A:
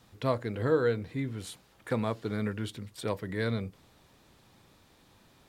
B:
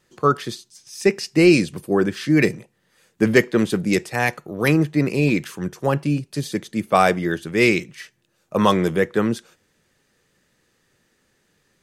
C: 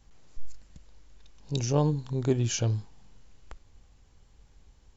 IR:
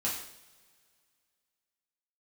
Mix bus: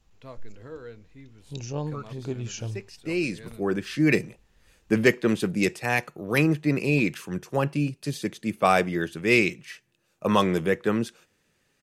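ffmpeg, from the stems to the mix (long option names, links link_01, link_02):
-filter_complex "[0:a]volume=-15dB[link_01];[1:a]adelay=1700,volume=-4.5dB[link_02];[2:a]volume=-6.5dB,asplit=2[link_03][link_04];[link_04]apad=whole_len=596363[link_05];[link_02][link_05]sidechaincompress=threshold=-46dB:ratio=8:attack=16:release=904[link_06];[link_01][link_06][link_03]amix=inputs=3:normalize=0,equalizer=frequency=2600:width_type=o:width=0.25:gain=5.5"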